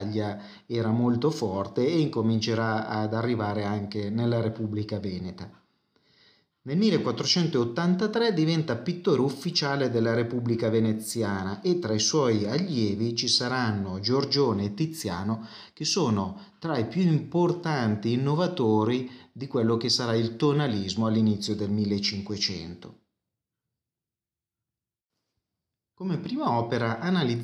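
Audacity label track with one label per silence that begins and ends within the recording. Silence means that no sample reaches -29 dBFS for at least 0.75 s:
5.440000	6.670000	silence
22.850000	26.010000	silence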